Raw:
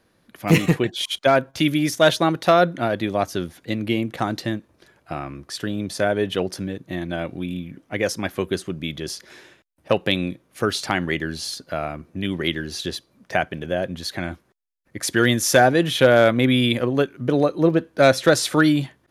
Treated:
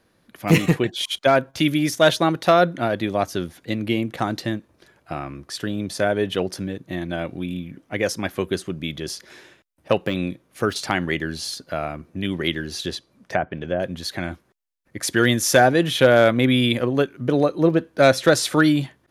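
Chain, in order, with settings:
0:10.03–0:10.76: de-essing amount 75%
0:12.93–0:13.80: treble cut that deepens with the level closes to 1,200 Hz, closed at −18.5 dBFS

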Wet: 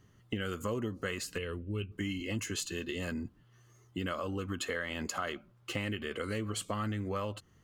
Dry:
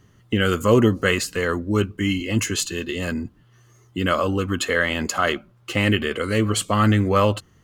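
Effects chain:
0:01.38–0:01.92: drawn EQ curve 100 Hz 0 dB, 280 Hz −9 dB, 440 Hz −4 dB, 780 Hz −16 dB, 1,100 Hz −12 dB, 1,900 Hz −10 dB, 2,700 Hz +7 dB, 6,100 Hz −30 dB, 9,500 Hz −3 dB, 14,000 Hz −13 dB
downward compressor 6 to 1, threshold −24 dBFS, peak gain reduction 13 dB
level −8 dB

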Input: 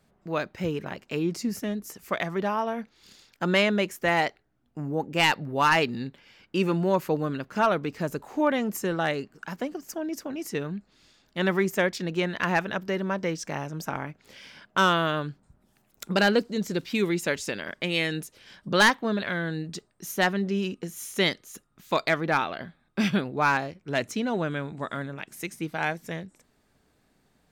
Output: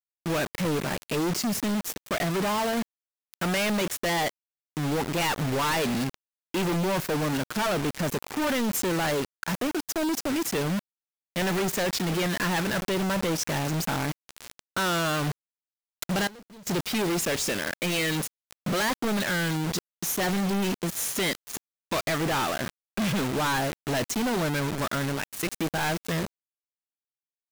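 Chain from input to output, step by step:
log-companded quantiser 2 bits
0:16.27–0:16.67: wrap-around overflow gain 41 dB

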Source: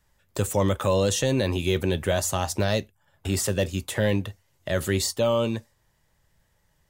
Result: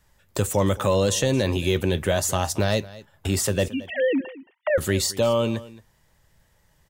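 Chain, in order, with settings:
0:03.68–0:04.78: three sine waves on the formant tracks
in parallel at −2 dB: downward compressor, threshold −32 dBFS, peak gain reduction 14 dB
on the sum: single-tap delay 222 ms −19 dB

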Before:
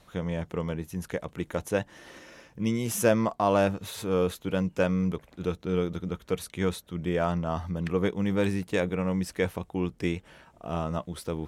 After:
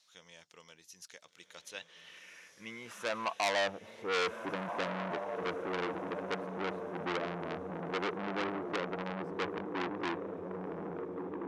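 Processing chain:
fade-out on the ending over 1.19 s
band-pass filter sweep 5,300 Hz → 350 Hz, 0:01.42–0:04.46
feedback delay with all-pass diffusion 1,495 ms, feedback 54%, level −7 dB
saturating transformer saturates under 3,900 Hz
level +2 dB

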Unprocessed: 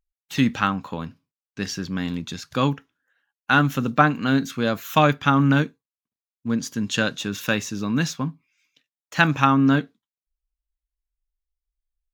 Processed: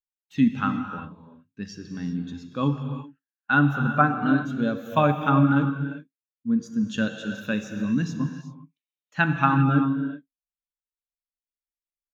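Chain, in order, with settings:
reverb whose tail is shaped and stops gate 420 ms flat, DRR 2.5 dB
every bin expanded away from the loudest bin 1.5 to 1
level −3.5 dB

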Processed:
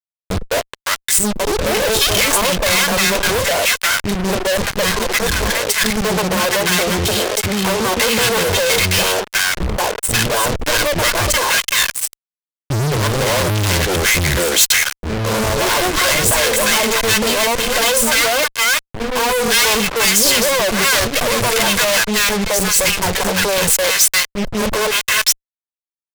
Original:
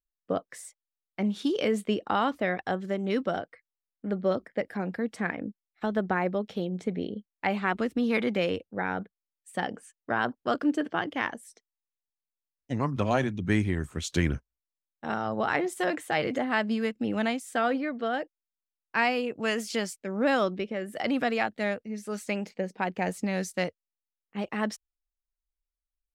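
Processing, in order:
lower of the sound and its delayed copy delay 1.9 ms
0:06.05–0:08.40: high-pass filter 83 Hz 24 dB per octave
three-band delay without the direct sound lows, mids, highs 210/560 ms, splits 360/1,200 Hz
fuzz pedal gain 53 dB, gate −50 dBFS
high-shelf EQ 3,000 Hz +10 dB
level −3 dB

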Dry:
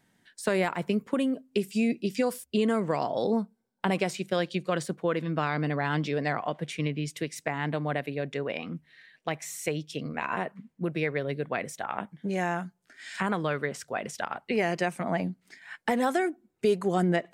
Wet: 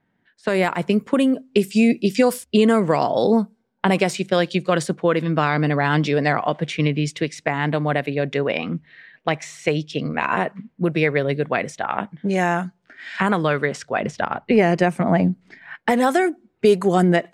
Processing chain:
0:14.00–0:15.75: spectral tilt −2 dB per octave
low-pass that shuts in the quiet parts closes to 2,100 Hz, open at −24 dBFS
automatic gain control gain up to 12 dB
level −1 dB

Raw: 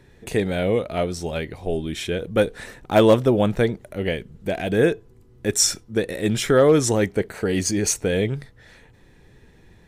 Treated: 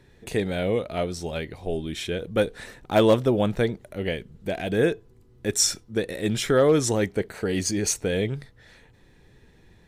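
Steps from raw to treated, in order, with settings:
parametric band 4,000 Hz +2.5 dB
level −3.5 dB

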